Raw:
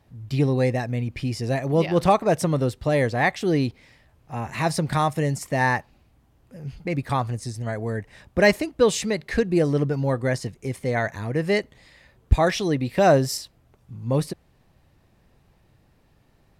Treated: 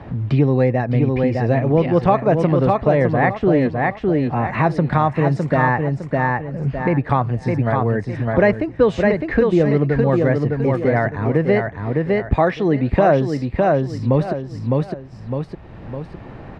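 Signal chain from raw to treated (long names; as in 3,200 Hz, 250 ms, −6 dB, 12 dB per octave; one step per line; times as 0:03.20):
low-pass filter 1,800 Hz 12 dB per octave
on a send: repeating echo 608 ms, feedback 26%, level −5 dB
on the sum: multiband upward and downward compressor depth 70%
level +5 dB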